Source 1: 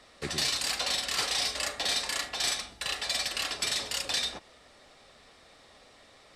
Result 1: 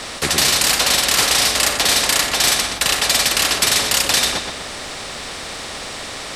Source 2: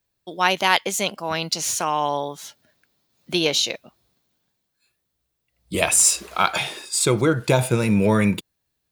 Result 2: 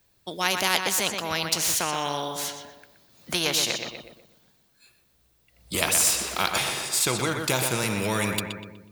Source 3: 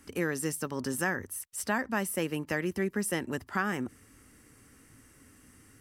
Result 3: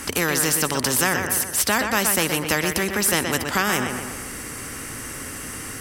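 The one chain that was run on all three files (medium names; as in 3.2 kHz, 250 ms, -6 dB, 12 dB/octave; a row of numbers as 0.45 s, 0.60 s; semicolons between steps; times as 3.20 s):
on a send: filtered feedback delay 123 ms, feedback 36%, low-pass 3.5 kHz, level -9.5 dB; on the sum: spectrum-flattening compressor 2:1; peak normalisation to -3 dBFS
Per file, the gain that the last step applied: +14.5 dB, -1.5 dB, +11.5 dB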